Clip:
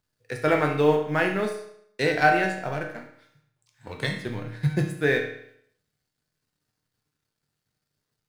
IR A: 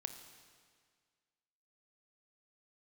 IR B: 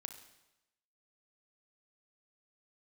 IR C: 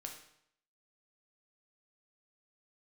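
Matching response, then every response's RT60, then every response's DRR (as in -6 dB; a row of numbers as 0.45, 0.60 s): C; 1.8, 0.95, 0.70 s; 7.5, 6.0, 2.0 dB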